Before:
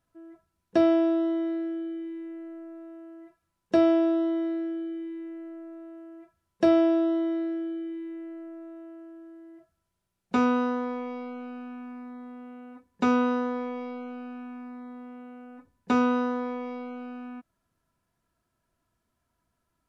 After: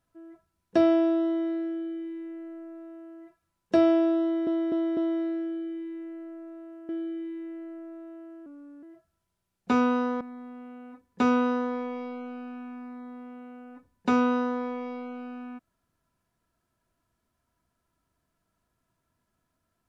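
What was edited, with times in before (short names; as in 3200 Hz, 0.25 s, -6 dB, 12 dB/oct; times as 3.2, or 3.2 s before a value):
4.22–4.47 loop, 4 plays
6.14–7.58 cut
9.15–9.47 speed 87%
10.85–12.03 cut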